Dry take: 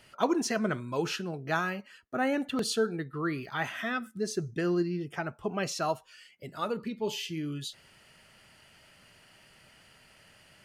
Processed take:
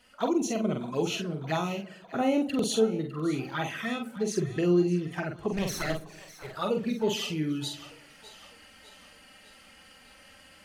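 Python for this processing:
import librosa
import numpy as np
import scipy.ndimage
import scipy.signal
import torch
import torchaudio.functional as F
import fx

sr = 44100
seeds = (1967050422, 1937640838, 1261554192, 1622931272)

y = fx.lower_of_two(x, sr, delay_ms=0.5, at=(5.52, 6.52))
y = fx.env_flanger(y, sr, rest_ms=4.3, full_db=-28.5)
y = fx.doubler(y, sr, ms=45.0, db=-5)
y = fx.echo_split(y, sr, split_hz=570.0, low_ms=121, high_ms=604, feedback_pct=52, wet_db=-16.0)
y = fx.rider(y, sr, range_db=10, speed_s=2.0)
y = F.gain(torch.from_numpy(y), 2.5).numpy()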